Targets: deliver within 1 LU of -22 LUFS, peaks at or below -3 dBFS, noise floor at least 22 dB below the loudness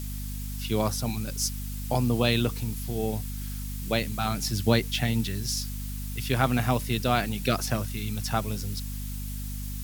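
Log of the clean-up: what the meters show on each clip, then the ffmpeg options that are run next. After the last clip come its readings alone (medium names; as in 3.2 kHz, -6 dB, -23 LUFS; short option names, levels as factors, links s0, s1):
hum 50 Hz; highest harmonic 250 Hz; hum level -32 dBFS; noise floor -34 dBFS; noise floor target -51 dBFS; loudness -28.5 LUFS; peak level -7.0 dBFS; loudness target -22.0 LUFS
-> -af "bandreject=f=50:t=h:w=4,bandreject=f=100:t=h:w=4,bandreject=f=150:t=h:w=4,bandreject=f=200:t=h:w=4,bandreject=f=250:t=h:w=4"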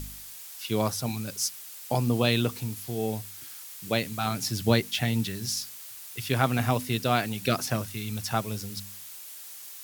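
hum not found; noise floor -44 dBFS; noise floor target -51 dBFS
-> -af "afftdn=nr=7:nf=-44"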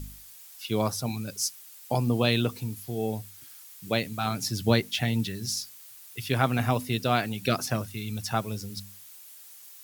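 noise floor -49 dBFS; noise floor target -51 dBFS
-> -af "afftdn=nr=6:nf=-49"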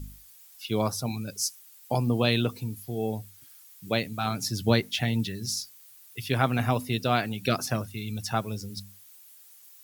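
noise floor -53 dBFS; loudness -28.5 LUFS; peak level -7.0 dBFS; loudness target -22.0 LUFS
-> -af "volume=2.11,alimiter=limit=0.708:level=0:latency=1"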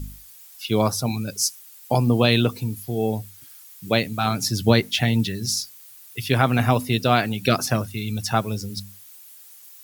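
loudness -22.5 LUFS; peak level -3.0 dBFS; noise floor -46 dBFS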